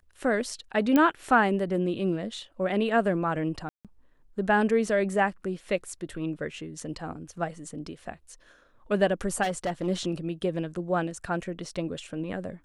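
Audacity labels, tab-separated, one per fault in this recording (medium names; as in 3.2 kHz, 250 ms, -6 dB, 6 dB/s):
0.960000	0.960000	pop -10 dBFS
3.690000	3.850000	dropout 157 ms
9.420000	9.880000	clipped -24 dBFS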